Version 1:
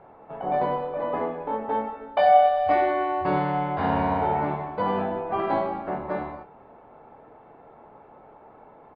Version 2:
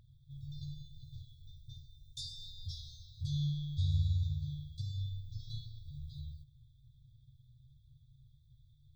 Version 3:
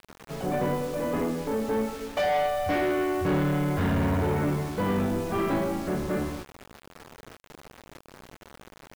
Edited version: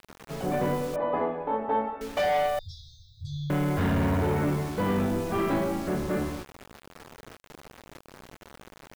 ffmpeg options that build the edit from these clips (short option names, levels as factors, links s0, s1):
-filter_complex "[2:a]asplit=3[s0][s1][s2];[s0]atrim=end=0.962[s3];[0:a]atrim=start=0.958:end=2.012[s4];[s1]atrim=start=2.008:end=2.592[s5];[1:a]atrim=start=2.588:end=3.502[s6];[s2]atrim=start=3.498[s7];[s3][s4]acrossfade=d=0.004:c1=hsin:c2=hsin[s8];[s8][s5]acrossfade=d=0.004:c1=hsin:c2=hsin[s9];[s9][s6]acrossfade=d=0.004:c1=hsin:c2=hsin[s10];[s10][s7]acrossfade=d=0.004:c1=hsin:c2=hsin"